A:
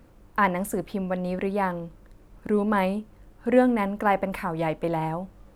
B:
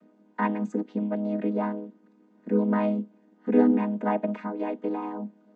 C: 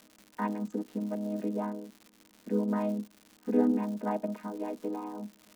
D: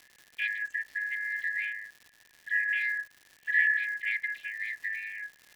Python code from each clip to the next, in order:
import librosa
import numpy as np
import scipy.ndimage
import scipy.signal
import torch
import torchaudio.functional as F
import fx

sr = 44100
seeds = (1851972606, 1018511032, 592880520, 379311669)

y1 = fx.chord_vocoder(x, sr, chord='minor triad', root=56)
y2 = fx.dmg_crackle(y1, sr, seeds[0], per_s=230.0, level_db=-36.0)
y2 = fx.dynamic_eq(y2, sr, hz=2100.0, q=1.2, threshold_db=-48.0, ratio=4.0, max_db=-5)
y2 = F.gain(torch.from_numpy(y2), -5.5).numpy()
y3 = fx.band_shuffle(y2, sr, order='4123')